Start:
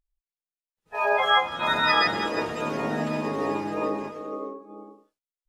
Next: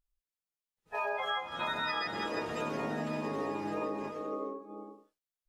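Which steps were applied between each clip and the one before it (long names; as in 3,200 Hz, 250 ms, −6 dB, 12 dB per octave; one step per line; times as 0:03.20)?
downward compressor 6 to 1, threshold −29 dBFS, peak gain reduction 13 dB
level −2.5 dB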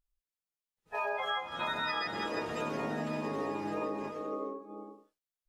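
no processing that can be heard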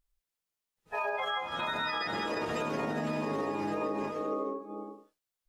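brickwall limiter −28.5 dBFS, peak gain reduction 6.5 dB
level +4.5 dB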